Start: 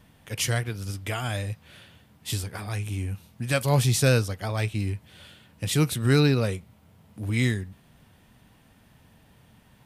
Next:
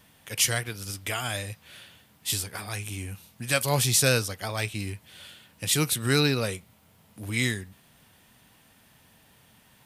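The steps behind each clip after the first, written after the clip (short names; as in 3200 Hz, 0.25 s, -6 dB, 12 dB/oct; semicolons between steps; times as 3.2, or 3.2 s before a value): tilt +2 dB/oct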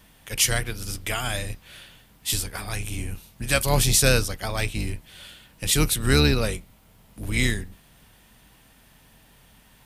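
octaver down 2 oct, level +1 dB; gain +2.5 dB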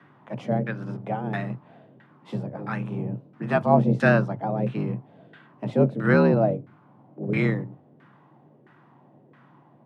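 frequency shift +100 Hz; LFO low-pass saw down 1.5 Hz 470–1600 Hz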